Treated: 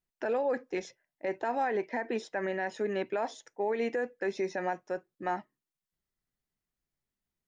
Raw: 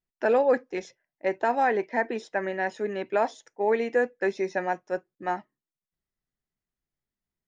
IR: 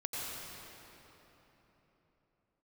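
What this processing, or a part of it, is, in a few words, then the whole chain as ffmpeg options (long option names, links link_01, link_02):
stacked limiters: -af "alimiter=limit=-16dB:level=0:latency=1:release=110,alimiter=limit=-22.5dB:level=0:latency=1:release=74"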